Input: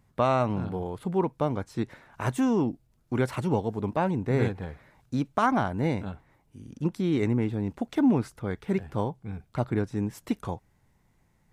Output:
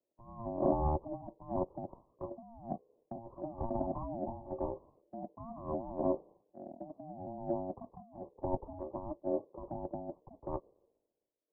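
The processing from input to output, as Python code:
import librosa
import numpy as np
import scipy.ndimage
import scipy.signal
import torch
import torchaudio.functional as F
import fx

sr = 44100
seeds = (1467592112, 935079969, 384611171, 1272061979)

y = fx.pitch_ramps(x, sr, semitones=-3.0, every_ms=1210)
y = scipy.signal.sosfilt(scipy.signal.butter(12, 650.0, 'lowpass', fs=sr, output='sos'), y)
y = fx.low_shelf(y, sr, hz=430.0, db=-2.0)
y = fx.over_compress(y, sr, threshold_db=-37.0, ratio=-1.0)
y = fx.rotary(y, sr, hz=1.0)
y = y * np.sin(2.0 * np.pi * 460.0 * np.arange(len(y)) / sr)
y = fx.band_widen(y, sr, depth_pct=100)
y = F.gain(torch.from_numpy(y), 2.0).numpy()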